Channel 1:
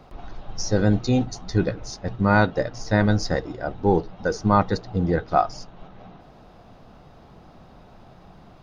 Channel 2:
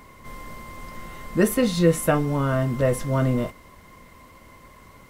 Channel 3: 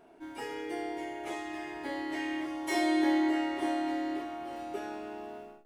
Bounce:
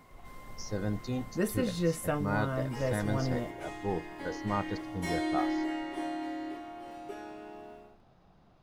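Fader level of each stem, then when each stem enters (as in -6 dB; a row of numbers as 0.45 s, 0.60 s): -14.0 dB, -11.0 dB, -4.5 dB; 0.00 s, 0.00 s, 2.35 s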